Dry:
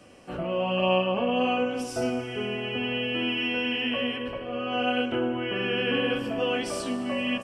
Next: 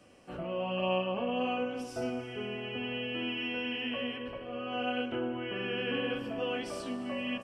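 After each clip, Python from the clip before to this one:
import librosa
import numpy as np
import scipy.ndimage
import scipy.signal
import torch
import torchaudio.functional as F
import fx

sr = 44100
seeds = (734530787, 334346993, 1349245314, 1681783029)

y = fx.dynamic_eq(x, sr, hz=8800.0, q=0.74, threshold_db=-51.0, ratio=4.0, max_db=-5)
y = y * librosa.db_to_amplitude(-7.0)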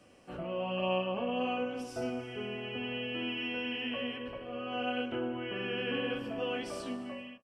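y = fx.fade_out_tail(x, sr, length_s=0.52)
y = y * librosa.db_to_amplitude(-1.0)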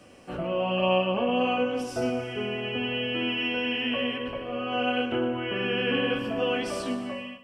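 y = fx.echo_feedback(x, sr, ms=123, feedback_pct=41, wet_db=-14.5)
y = y * librosa.db_to_amplitude(8.0)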